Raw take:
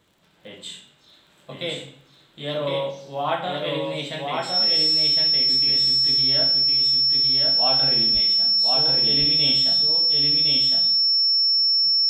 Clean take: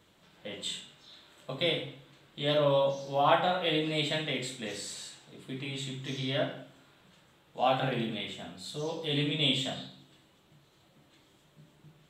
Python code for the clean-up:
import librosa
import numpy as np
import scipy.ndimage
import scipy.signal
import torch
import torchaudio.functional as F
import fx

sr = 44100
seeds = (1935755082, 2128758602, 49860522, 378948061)

y = fx.fix_declick_ar(x, sr, threshold=6.5)
y = fx.notch(y, sr, hz=5400.0, q=30.0)
y = fx.fix_deplosive(y, sr, at_s=(8.13,))
y = fx.fix_echo_inverse(y, sr, delay_ms=1060, level_db=-3.0)